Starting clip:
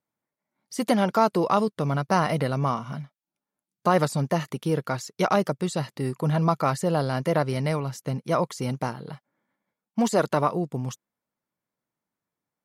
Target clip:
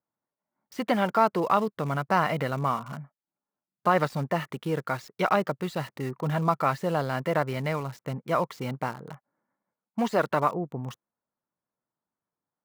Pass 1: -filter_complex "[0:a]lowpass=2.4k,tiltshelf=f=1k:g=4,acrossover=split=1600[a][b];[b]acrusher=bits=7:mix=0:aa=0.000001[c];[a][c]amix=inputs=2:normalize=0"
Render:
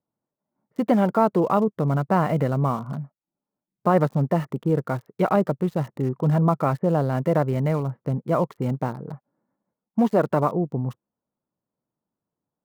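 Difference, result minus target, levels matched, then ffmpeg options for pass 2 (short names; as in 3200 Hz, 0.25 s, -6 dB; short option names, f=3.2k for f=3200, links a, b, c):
1000 Hz band -4.0 dB
-filter_complex "[0:a]lowpass=2.4k,tiltshelf=f=1k:g=-5,acrossover=split=1600[a][b];[b]acrusher=bits=7:mix=0:aa=0.000001[c];[a][c]amix=inputs=2:normalize=0"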